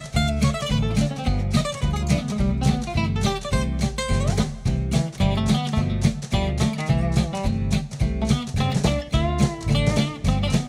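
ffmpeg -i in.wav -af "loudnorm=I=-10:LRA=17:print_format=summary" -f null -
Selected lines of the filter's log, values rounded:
Input Integrated:    -22.9 LUFS
Input True Peak:      -5.4 dBTP
Input LRA:             0.6 LU
Input Threshold:     -32.9 LUFS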